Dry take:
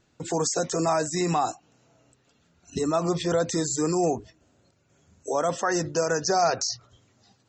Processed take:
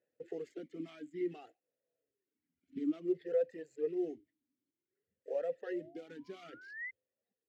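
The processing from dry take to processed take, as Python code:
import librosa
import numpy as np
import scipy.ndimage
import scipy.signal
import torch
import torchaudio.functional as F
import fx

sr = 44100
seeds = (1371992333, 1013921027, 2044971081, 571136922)

y = scipy.signal.medfilt(x, 15)
y = fx.dereverb_blind(y, sr, rt60_s=1.6)
y = fx.mod_noise(y, sr, seeds[0], snr_db=31)
y = fx.spec_paint(y, sr, seeds[1], shape='rise', start_s=5.66, length_s=1.25, low_hz=510.0, high_hz=2100.0, level_db=-31.0)
y = fx.vowel_sweep(y, sr, vowels='e-i', hz=0.56)
y = F.gain(torch.from_numpy(y), -3.5).numpy()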